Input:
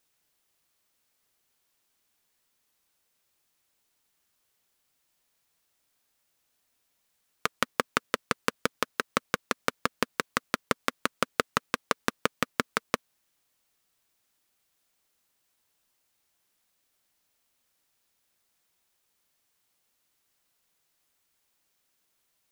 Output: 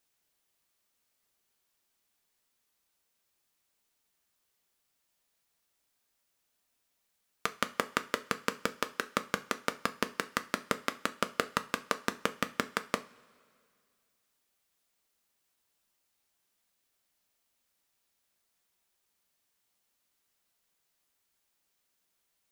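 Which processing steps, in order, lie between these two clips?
two-slope reverb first 0.29 s, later 2.2 s, from -21 dB, DRR 9.5 dB; trim -4 dB

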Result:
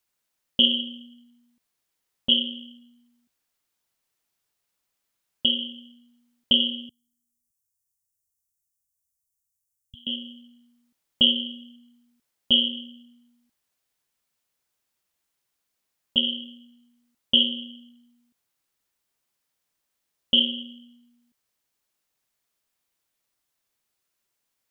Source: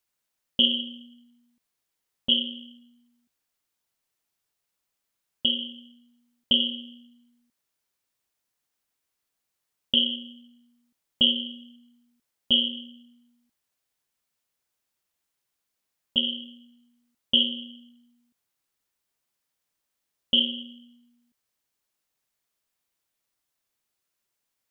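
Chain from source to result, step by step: 6.89–10.07 s: inverse Chebyshev band-stop 420–1900 Hz, stop band 70 dB; trim +2 dB

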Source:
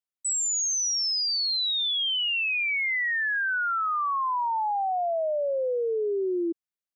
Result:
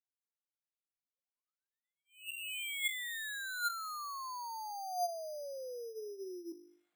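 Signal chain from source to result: high-pass 180 Hz; treble shelf 2.8 kHz +12 dB; hum notches 50/100/150/200/250/300/350/400/450 Hz; reverse; upward compressor, threshold -28 dBFS; reverse; distance through air 180 m; feedback comb 710 Hz, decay 0.17 s, harmonics all, mix 80%; careless resampling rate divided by 8×, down filtered, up hold; trim -3.5 dB

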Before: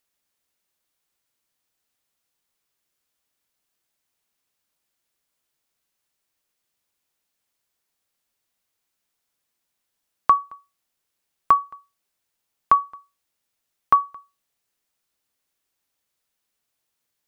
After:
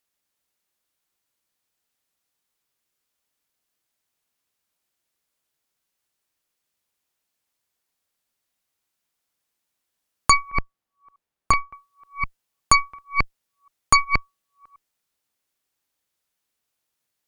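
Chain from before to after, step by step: chunks repeated in reverse 360 ms, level -8.5 dB; Chebyshev shaper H 8 -7 dB, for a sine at -5 dBFS; 10.50–11.73 s: treble shelf 2.3 kHz -10.5 dB; trim -1.5 dB

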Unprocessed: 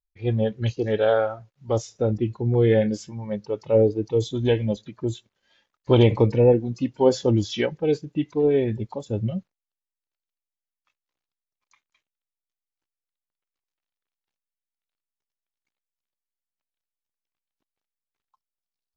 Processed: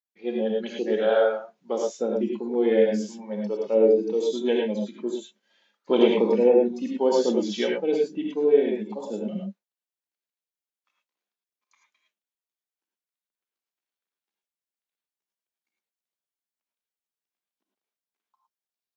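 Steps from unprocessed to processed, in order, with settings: elliptic high-pass 190 Hz, stop band 40 dB; gated-style reverb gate 130 ms rising, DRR -1 dB; trim -3.5 dB

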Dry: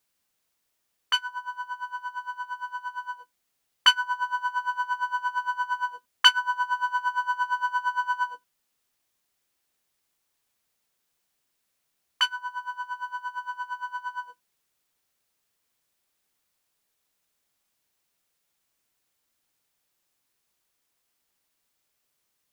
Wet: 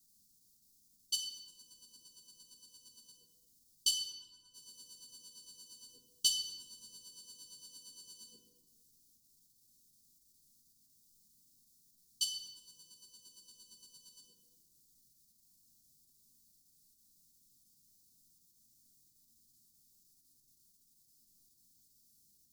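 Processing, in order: 4.06–4.54 s: resonances exaggerated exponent 1.5; in parallel at +3 dB: level held to a coarse grid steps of 11 dB; on the sum: inverse Chebyshev band-stop 630–2300 Hz, stop band 50 dB; simulated room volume 1100 m³, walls mixed, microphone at 1.4 m

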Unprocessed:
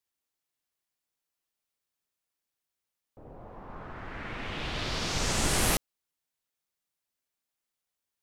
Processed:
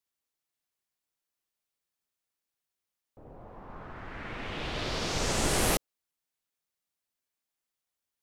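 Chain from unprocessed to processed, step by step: dynamic bell 480 Hz, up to +5 dB, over -43 dBFS, Q 0.92; trim -1.5 dB

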